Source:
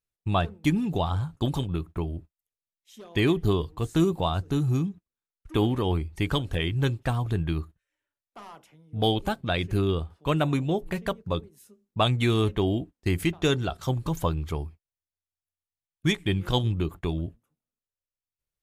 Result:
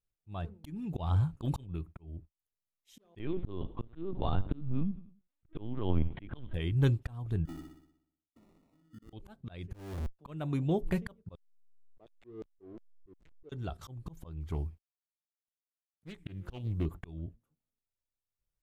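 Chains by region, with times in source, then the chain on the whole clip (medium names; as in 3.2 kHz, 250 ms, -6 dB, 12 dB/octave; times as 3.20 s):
0.79–2.11 s: peaking EQ 2.5 kHz +5 dB 0.36 oct + upward compressor, threshold -46 dBFS + slow attack 117 ms
3.19–6.54 s: transient shaper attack 0 dB, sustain +5 dB + feedback delay 94 ms, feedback 34%, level -19 dB + LPC vocoder at 8 kHz pitch kept
7.45–9.13 s: vowel filter i + sample-rate reducer 1.6 kHz + flutter echo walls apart 10.4 m, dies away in 0.72 s
9.74–10.19 s: Schmitt trigger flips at -34 dBFS + compression 4:1, threshold -29 dBFS
11.35–13.52 s: LFO band-pass square 2.8 Hz 420–6600 Hz + hysteresis with a dead band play -32.5 dBFS + distance through air 75 m
14.40–16.86 s: companded quantiser 8-bit + loudspeaker Doppler distortion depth 0.51 ms
whole clip: tilt EQ -2 dB/octave; slow attack 608 ms; treble shelf 7.8 kHz +7 dB; trim -4.5 dB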